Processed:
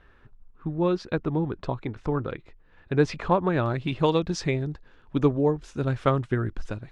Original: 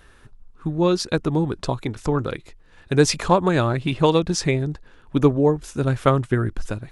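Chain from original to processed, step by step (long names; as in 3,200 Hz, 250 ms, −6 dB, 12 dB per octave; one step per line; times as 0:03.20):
low-pass filter 2,600 Hz 12 dB per octave, from 0:03.66 5,100 Hz
level −5 dB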